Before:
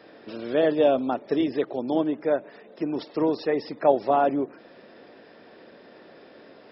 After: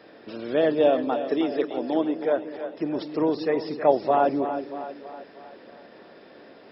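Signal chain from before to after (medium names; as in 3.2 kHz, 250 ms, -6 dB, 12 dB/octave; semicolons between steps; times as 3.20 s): 0.88–2.38 s: high-pass 220 Hz 12 dB/octave; two-band feedback delay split 420 Hz, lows 196 ms, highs 318 ms, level -9.5 dB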